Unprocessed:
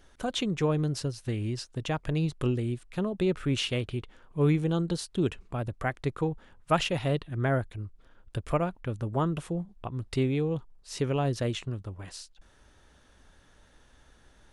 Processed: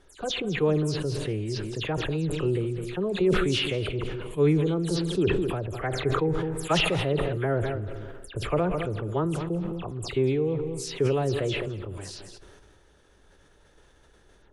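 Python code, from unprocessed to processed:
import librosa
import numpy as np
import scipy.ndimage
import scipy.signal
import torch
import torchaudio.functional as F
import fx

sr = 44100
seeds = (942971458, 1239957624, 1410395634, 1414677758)

y = fx.spec_delay(x, sr, highs='early', ms=107)
y = fx.peak_eq(y, sr, hz=410.0, db=8.0, octaves=0.61)
y = y + 10.0 ** (-15.5 / 20.0) * np.pad(y, (int(211 * sr / 1000.0), 0))[:len(y)]
y = fx.rev_spring(y, sr, rt60_s=2.3, pass_ms=(31, 36, 54), chirp_ms=70, drr_db=19.5)
y = fx.sustainer(y, sr, db_per_s=26.0)
y = F.gain(torch.from_numpy(y), -2.0).numpy()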